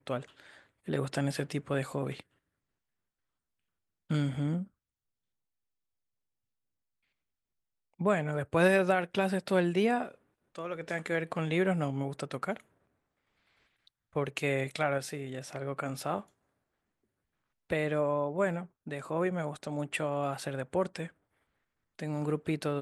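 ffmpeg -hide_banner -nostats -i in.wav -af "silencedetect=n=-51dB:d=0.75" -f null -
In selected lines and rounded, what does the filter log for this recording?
silence_start: 2.21
silence_end: 4.10 | silence_duration: 1.89
silence_start: 4.67
silence_end: 8.00 | silence_duration: 3.33
silence_start: 12.60
silence_end: 13.87 | silence_duration: 1.27
silence_start: 16.24
silence_end: 17.70 | silence_duration: 1.46
silence_start: 21.10
silence_end: 21.99 | silence_duration: 0.89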